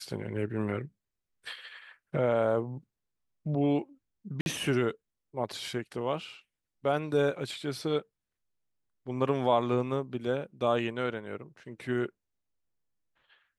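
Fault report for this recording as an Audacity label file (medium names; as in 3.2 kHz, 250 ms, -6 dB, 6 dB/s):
4.410000	4.460000	dropout 51 ms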